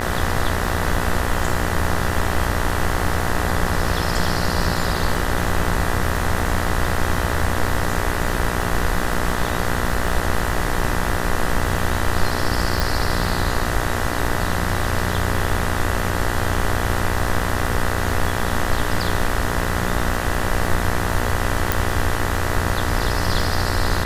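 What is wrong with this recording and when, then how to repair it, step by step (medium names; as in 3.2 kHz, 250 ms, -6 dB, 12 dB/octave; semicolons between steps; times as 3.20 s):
buzz 60 Hz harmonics 33 -25 dBFS
crackle 34 per s -27 dBFS
12.80 s: pop
21.72 s: pop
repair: de-click; de-hum 60 Hz, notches 33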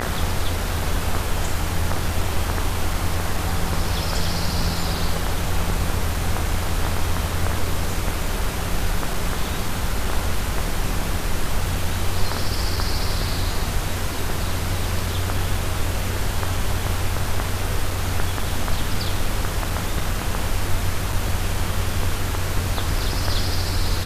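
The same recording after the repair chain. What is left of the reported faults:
12.80 s: pop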